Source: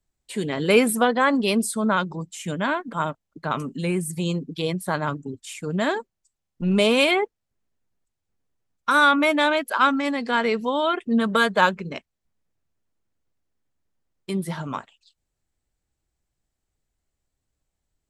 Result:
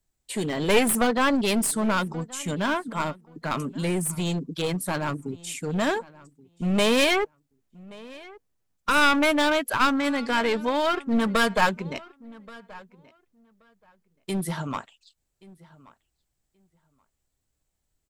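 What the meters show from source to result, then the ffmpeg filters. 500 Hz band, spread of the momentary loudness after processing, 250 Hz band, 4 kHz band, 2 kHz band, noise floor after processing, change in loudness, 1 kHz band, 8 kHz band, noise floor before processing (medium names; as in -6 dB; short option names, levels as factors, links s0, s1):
-2.5 dB, 15 LU, -1.5 dB, -0.5 dB, -2.5 dB, -78 dBFS, -2.0 dB, -3.0 dB, +3.0 dB, -81 dBFS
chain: -filter_complex "[0:a]highshelf=f=6900:g=6.5,aeval=exprs='clip(val(0),-1,0.0708)':c=same,asplit=2[s0][s1];[s1]adelay=1128,lowpass=f=3300:p=1,volume=0.0841,asplit=2[s2][s3];[s3]adelay=1128,lowpass=f=3300:p=1,volume=0.16[s4];[s0][s2][s4]amix=inputs=3:normalize=0"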